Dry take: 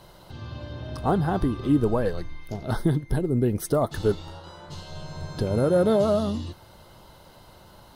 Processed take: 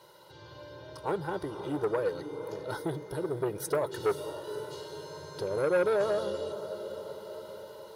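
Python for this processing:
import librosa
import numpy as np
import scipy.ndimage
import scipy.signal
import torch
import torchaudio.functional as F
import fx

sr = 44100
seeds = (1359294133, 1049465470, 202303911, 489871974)

y = scipy.signal.sosfilt(scipy.signal.butter(2, 220.0, 'highpass', fs=sr, output='sos'), x)
y = fx.echo_diffused(y, sr, ms=513, feedback_pct=52, wet_db=-11.0)
y = fx.rider(y, sr, range_db=3, speed_s=2.0)
y = y + 0.97 * np.pad(y, (int(2.1 * sr / 1000.0), 0))[:len(y)]
y = fx.transformer_sat(y, sr, knee_hz=780.0)
y = y * librosa.db_to_amplitude(-8.0)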